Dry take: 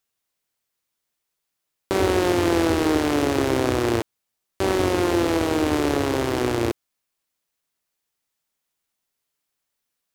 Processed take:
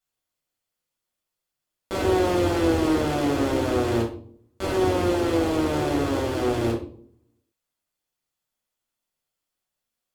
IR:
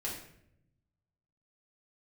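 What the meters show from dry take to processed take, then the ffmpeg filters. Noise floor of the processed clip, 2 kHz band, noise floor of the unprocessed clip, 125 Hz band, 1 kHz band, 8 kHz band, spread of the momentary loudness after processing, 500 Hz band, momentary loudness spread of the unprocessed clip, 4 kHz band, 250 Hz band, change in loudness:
-85 dBFS, -4.0 dB, -80 dBFS, 0.0 dB, -2.0 dB, -5.0 dB, 10 LU, -1.5 dB, 7 LU, -3.5 dB, -1.5 dB, -2.0 dB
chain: -filter_complex "[1:a]atrim=start_sample=2205,asetrate=74970,aresample=44100[a];[0:a][a]afir=irnorm=-1:irlink=0,volume=-1dB"

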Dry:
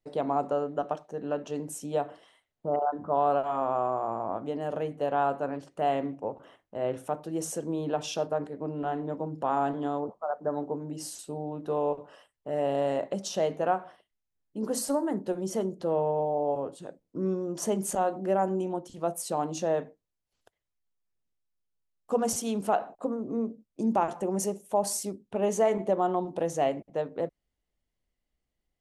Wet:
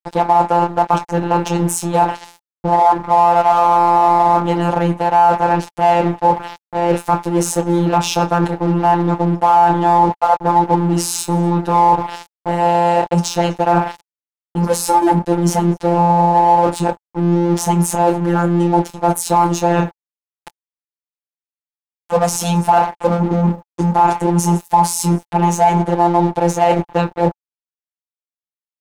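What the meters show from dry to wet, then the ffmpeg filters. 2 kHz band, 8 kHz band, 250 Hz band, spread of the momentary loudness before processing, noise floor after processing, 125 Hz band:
+16.5 dB, +13.0 dB, +15.5 dB, 8 LU, under -85 dBFS, +21.5 dB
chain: -filter_complex "[0:a]afftfilt=real='hypot(re,im)*cos(PI*b)':imag='0':win_size=1024:overlap=0.75,equalizer=f=87:w=1.7:g=13,asplit=2[a][b];[b]adelay=24,volume=-10dB[c];[a][c]amix=inputs=2:normalize=0,areverse,acompressor=threshold=-40dB:ratio=10,areverse,bandreject=f=590:w=12,asplit=2[d][e];[e]adelay=244.9,volume=-26dB,highshelf=f=4k:g=-5.51[f];[d][f]amix=inputs=2:normalize=0,aeval=exprs='sgn(val(0))*max(abs(val(0))-0.0015,0)':c=same,equalizer=f=860:w=5.3:g=13,alimiter=level_in=30.5dB:limit=-1dB:release=50:level=0:latency=1,volume=-1dB"

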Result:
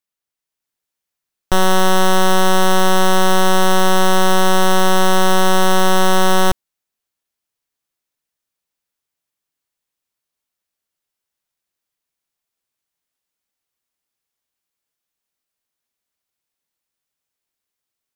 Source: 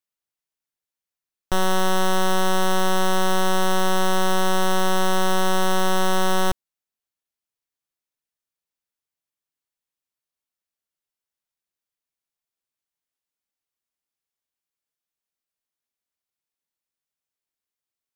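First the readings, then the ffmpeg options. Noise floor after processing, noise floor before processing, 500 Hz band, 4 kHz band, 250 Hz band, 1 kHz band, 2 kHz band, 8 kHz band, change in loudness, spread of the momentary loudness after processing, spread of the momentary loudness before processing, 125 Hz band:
-83 dBFS, under -85 dBFS, +7.0 dB, +7.0 dB, +7.0 dB, +7.0 dB, +7.0 dB, +7.0 dB, +7.0 dB, 1 LU, 1 LU, +7.0 dB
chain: -af "dynaudnorm=f=370:g=3:m=5dB,volume=2dB"

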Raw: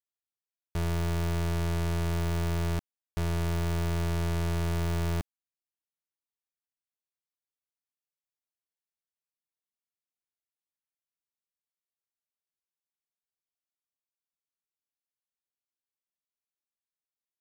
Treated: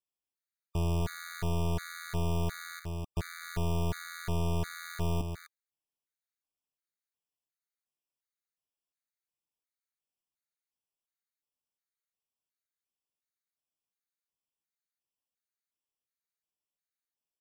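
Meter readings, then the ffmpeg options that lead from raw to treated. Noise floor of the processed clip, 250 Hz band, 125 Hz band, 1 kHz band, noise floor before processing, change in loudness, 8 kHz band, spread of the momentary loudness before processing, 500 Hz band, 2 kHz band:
under -85 dBFS, -3.5 dB, -4.0 dB, -2.0 dB, under -85 dBFS, -4.0 dB, -2.0 dB, 5 LU, -2.5 dB, -2.0 dB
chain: -af "aecho=1:1:253:0.447,afftfilt=real='re*gt(sin(2*PI*1.4*pts/sr)*(1-2*mod(floor(b*sr/1024/1200),2)),0)':imag='im*gt(sin(2*PI*1.4*pts/sr)*(1-2*mod(floor(b*sr/1024/1200),2)),0)':win_size=1024:overlap=0.75"

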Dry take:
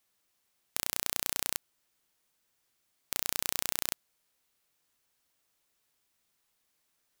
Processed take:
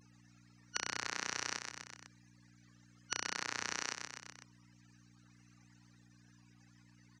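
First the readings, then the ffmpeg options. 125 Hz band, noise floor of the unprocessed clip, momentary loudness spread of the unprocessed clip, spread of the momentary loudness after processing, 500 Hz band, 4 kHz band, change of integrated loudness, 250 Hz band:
-1.0 dB, -77 dBFS, 7 LU, 15 LU, -3.5 dB, -3.0 dB, -7.5 dB, -1.0 dB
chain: -filter_complex "[0:a]afftfilt=real='real(if(lt(b,272),68*(eq(floor(b/68),0)*2+eq(floor(b/68),1)*0+eq(floor(b/68),2)*3+eq(floor(b/68),3)*1)+mod(b,68),b),0)':imag='imag(if(lt(b,272),68*(eq(floor(b/68),0)*2+eq(floor(b/68),1)*0+eq(floor(b/68),2)*3+eq(floor(b/68),3)*1)+mod(b,68),b),0)':win_size=2048:overlap=0.75,afftfilt=real='re*gte(hypot(re,im),0.000158)':imag='im*gte(hypot(re,im),0.000158)':win_size=1024:overlap=0.75,acrossover=split=680|3100[a][b][c];[b]acontrast=31[d];[a][d][c]amix=inputs=3:normalize=0,equalizer=f=150:w=3.9:g=-9,asplit=2[e][f];[f]asoftclip=type=hard:threshold=-18dB,volume=-7dB[g];[e][g]amix=inputs=2:normalize=0,aecho=1:1:125|250|375|500:0.316|0.133|0.0558|0.0234,asoftclip=type=tanh:threshold=-18dB,acompressor=threshold=-52dB:ratio=2.5,aeval=exprs='val(0)+0.000398*(sin(2*PI*60*n/s)+sin(2*PI*2*60*n/s)/2+sin(2*PI*3*60*n/s)/3+sin(2*PI*4*60*n/s)/4+sin(2*PI*5*60*n/s)/5)':c=same,highpass=f=100:w=0.5412,highpass=f=100:w=1.3066,equalizer=f=640:t=q:w=4:g=-9,equalizer=f=1.8k:t=q:w=4:g=4,equalizer=f=3.3k:t=q:w=4:g=-9,equalizer=f=6.1k:t=q:w=4:g=6,lowpass=f=6.6k:w=0.5412,lowpass=f=6.6k:w=1.3066,volume=10.5dB"

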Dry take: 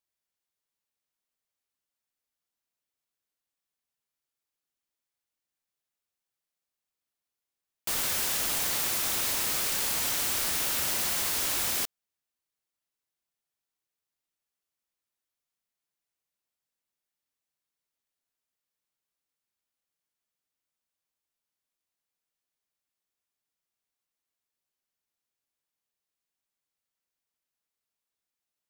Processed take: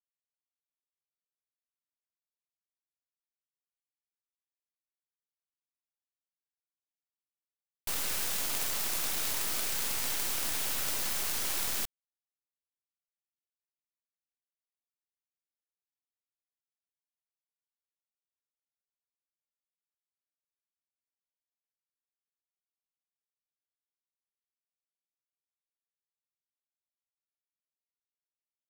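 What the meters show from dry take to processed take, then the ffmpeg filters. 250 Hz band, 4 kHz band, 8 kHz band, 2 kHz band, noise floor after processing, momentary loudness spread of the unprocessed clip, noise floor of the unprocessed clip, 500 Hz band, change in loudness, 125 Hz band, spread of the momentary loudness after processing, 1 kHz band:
-4.5 dB, -4.5 dB, -4.5 dB, -4.5 dB, under -85 dBFS, 2 LU, under -85 dBFS, -4.5 dB, -4.5 dB, -4.0 dB, 3 LU, -4.5 dB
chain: -af "acrusher=bits=4:dc=4:mix=0:aa=0.000001"

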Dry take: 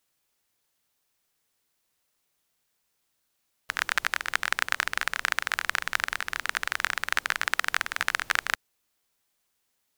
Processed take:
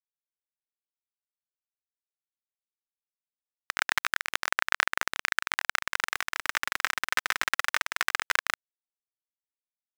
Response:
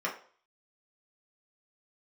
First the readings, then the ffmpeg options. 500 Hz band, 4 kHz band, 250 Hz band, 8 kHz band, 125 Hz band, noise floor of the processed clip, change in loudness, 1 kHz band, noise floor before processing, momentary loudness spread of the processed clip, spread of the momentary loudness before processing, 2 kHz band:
0.0 dB, -0.5 dB, -0.5 dB, 0.0 dB, n/a, under -85 dBFS, -0.5 dB, 0.0 dB, -76 dBFS, 5 LU, 3 LU, -1.0 dB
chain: -af "aeval=exprs='val(0)+0.00501*(sin(2*PI*50*n/s)+sin(2*PI*2*50*n/s)/2+sin(2*PI*3*50*n/s)/3+sin(2*PI*4*50*n/s)/4+sin(2*PI*5*50*n/s)/5)':c=same,aphaser=in_gain=1:out_gain=1:delay=3.9:decay=0.42:speed=0.21:type=sinusoidal,aeval=exprs='val(0)*gte(abs(val(0)),0.0631)':c=same,volume=-1.5dB"

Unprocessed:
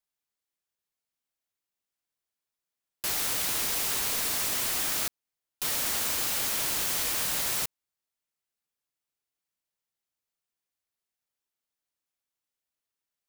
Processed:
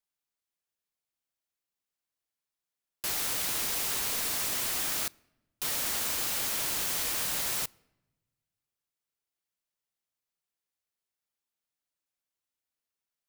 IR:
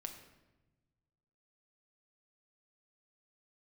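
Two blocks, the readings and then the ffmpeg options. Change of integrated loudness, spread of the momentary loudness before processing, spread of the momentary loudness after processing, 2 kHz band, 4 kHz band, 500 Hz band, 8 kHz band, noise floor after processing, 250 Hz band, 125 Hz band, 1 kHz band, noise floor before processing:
-2.0 dB, 4 LU, 4 LU, -2.0 dB, -2.0 dB, -2.0 dB, -2.0 dB, under -85 dBFS, -2.0 dB, -2.0 dB, -2.0 dB, under -85 dBFS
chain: -filter_complex "[0:a]asplit=2[a][b];[1:a]atrim=start_sample=2205[c];[b][c]afir=irnorm=-1:irlink=0,volume=-15dB[d];[a][d]amix=inputs=2:normalize=0,volume=-3dB"

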